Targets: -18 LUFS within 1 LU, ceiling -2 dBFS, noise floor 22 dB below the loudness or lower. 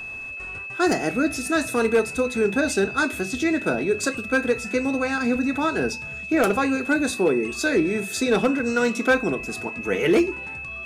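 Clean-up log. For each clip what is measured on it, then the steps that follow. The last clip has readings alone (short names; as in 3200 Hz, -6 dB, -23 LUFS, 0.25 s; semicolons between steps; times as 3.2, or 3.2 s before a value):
clipped 0.4%; flat tops at -12.0 dBFS; steady tone 2600 Hz; tone level -32 dBFS; loudness -23.0 LUFS; peak -12.0 dBFS; loudness target -18.0 LUFS
-> clip repair -12 dBFS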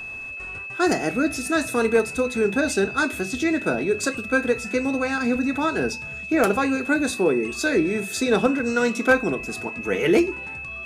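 clipped 0.0%; steady tone 2600 Hz; tone level -32 dBFS
-> notch 2600 Hz, Q 30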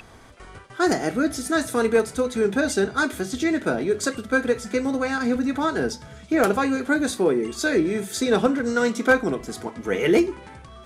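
steady tone none; loudness -23.0 LUFS; peak -4.0 dBFS; loudness target -18.0 LUFS
-> gain +5 dB; limiter -2 dBFS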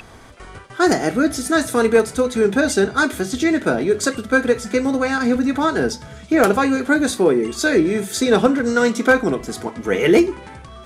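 loudness -18.0 LUFS; peak -2.0 dBFS; noise floor -40 dBFS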